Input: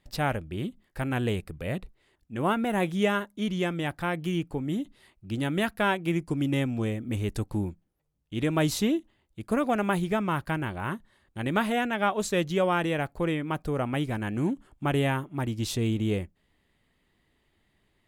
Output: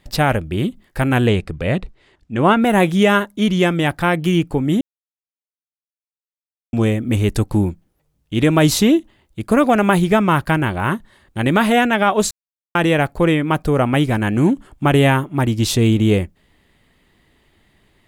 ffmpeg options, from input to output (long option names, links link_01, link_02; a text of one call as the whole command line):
ffmpeg -i in.wav -filter_complex "[0:a]asettb=1/sr,asplit=3[link_01][link_02][link_03];[link_01]atrim=end=1.274[link_04];[link_02]atrim=start=1.27:end=2.62,asetpts=PTS-STARTPTS,afade=type=in:duration=0.004:curve=qsin,afade=type=out:start_time=1.346:duration=0.004:curve=qsin,lowpass=6400[link_05];[link_03]atrim=start=2.616[link_06];[link_04][link_05]acrossfade=duration=0.004:curve1=hsin:curve2=qsin[link_07];[link_07][link_06]acrossfade=duration=0.004:curve1=qsin:curve2=hsin,asplit=5[link_08][link_09][link_10][link_11][link_12];[link_08]atrim=end=4.81,asetpts=PTS-STARTPTS,afade=type=out:start_time=4.806:duration=0.004:curve=hsin[link_13];[link_09]atrim=start=4.81:end=6.73,asetpts=PTS-STARTPTS,volume=0[link_14];[link_10]atrim=start=6.73:end=12.31,asetpts=PTS-STARTPTS,afade=type=in:duration=0.004:curve=hsin,afade=type=out:start_time=5.576:duration=0.004:curve=hsin[link_15];[link_11]atrim=start=12.31:end=12.75,asetpts=PTS-STARTPTS,volume=0[link_16];[link_12]atrim=start=12.75,asetpts=PTS-STARTPTS,afade=type=in:duration=0.004:curve=hsin[link_17];[link_13][link_14][link_15][link_16][link_17]concat=n=5:v=0:a=1,alimiter=level_in=15.5dB:limit=-1dB:release=50:level=0:latency=1,volume=-3dB" out.wav